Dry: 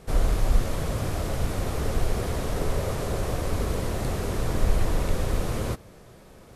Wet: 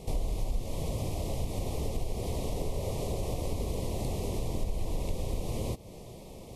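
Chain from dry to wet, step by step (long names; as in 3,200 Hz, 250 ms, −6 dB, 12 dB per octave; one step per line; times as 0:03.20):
downward compressor 3 to 1, threshold −35 dBFS, peak gain reduction 16 dB
Butterworth band-reject 1,500 Hz, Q 1.1
level +3.5 dB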